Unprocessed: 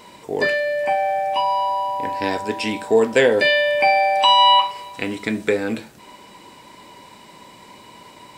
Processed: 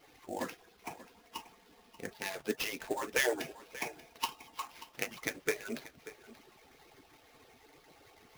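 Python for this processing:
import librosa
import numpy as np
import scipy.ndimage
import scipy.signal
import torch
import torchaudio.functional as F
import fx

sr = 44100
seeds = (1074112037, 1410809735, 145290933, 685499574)

y = fx.hpss_only(x, sr, part='percussive')
y = fx.sample_hold(y, sr, seeds[0], rate_hz=8300.0, jitter_pct=20)
y = y + 10.0 ** (-16.5 / 20.0) * np.pad(y, (int(585 * sr / 1000.0), 0))[:len(y)]
y = y * 10.0 ** (-8.5 / 20.0)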